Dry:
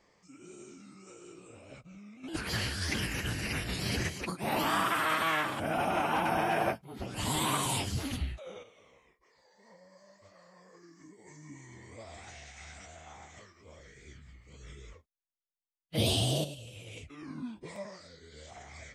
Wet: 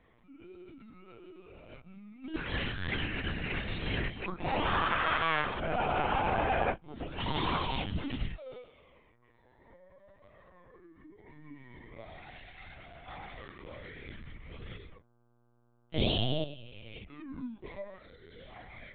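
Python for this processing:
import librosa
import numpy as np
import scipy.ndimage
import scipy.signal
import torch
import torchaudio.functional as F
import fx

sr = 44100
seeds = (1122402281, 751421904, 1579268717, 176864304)

y = fx.power_curve(x, sr, exponent=0.5, at=(13.08, 14.77))
y = fx.dmg_buzz(y, sr, base_hz=120.0, harmonics=13, level_db=-68.0, tilt_db=-6, odd_only=False)
y = fx.lpc_vocoder(y, sr, seeds[0], excitation='pitch_kept', order=16)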